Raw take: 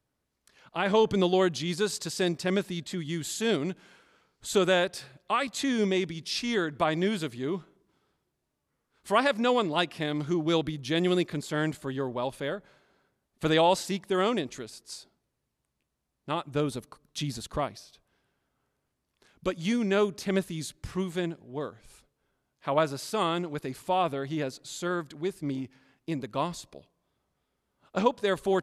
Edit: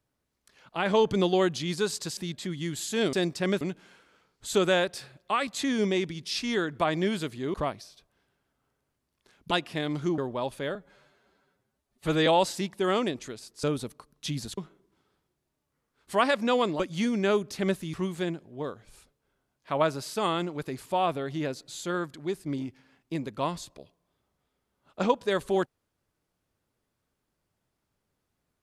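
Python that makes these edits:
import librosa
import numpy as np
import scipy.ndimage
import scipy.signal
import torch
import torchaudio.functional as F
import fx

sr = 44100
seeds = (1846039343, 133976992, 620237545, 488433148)

y = fx.edit(x, sr, fx.move(start_s=2.17, length_s=0.48, to_s=3.61),
    fx.swap(start_s=7.54, length_s=2.22, other_s=17.5, other_length_s=1.97),
    fx.cut(start_s=10.43, length_s=1.56),
    fx.stretch_span(start_s=12.56, length_s=1.01, factor=1.5),
    fx.cut(start_s=14.94, length_s=1.62),
    fx.cut(start_s=20.61, length_s=0.29), tone=tone)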